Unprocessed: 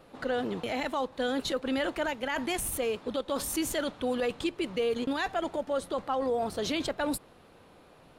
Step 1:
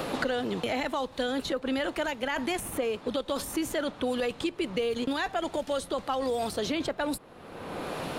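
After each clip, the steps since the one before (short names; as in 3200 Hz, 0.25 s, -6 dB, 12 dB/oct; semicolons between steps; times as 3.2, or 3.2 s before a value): three-band squash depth 100%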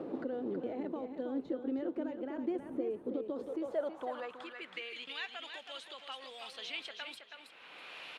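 on a send: feedback echo 0.323 s, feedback 26%, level -7 dB; on the sum: band-pass sweep 330 Hz -> 2700 Hz, 3.26–5.04; gain -1.5 dB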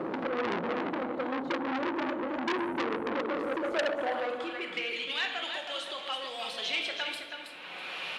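shoebox room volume 480 m³, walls mixed, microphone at 1 m; core saturation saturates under 2700 Hz; gain +8.5 dB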